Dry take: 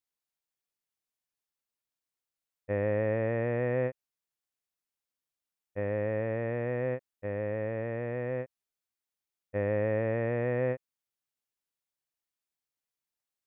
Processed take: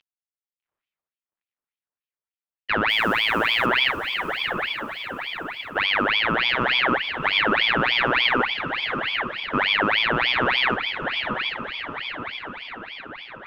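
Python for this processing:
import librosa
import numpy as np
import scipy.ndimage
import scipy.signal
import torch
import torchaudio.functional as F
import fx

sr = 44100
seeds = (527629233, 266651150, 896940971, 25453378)

p1 = fx.cvsd(x, sr, bps=64000)
p2 = fx.over_compress(p1, sr, threshold_db=-35.0, ratio=-1.0)
p3 = p1 + F.gain(torch.from_numpy(p2), 2.5).numpy()
p4 = fx.vibrato(p3, sr, rate_hz=0.8, depth_cents=74.0)
p5 = fx.bandpass_edges(p4, sr, low_hz=220.0, high_hz=2200.0)
p6 = fx.mod_noise(p5, sr, seeds[0], snr_db=28, at=(2.89, 3.66))
p7 = fx.echo_diffused(p6, sr, ms=813, feedback_pct=57, wet_db=-6.0)
p8 = fx.ring_lfo(p7, sr, carrier_hz=1800.0, swing_pct=60, hz=3.4)
y = F.gain(torch.from_numpy(p8), 8.0).numpy()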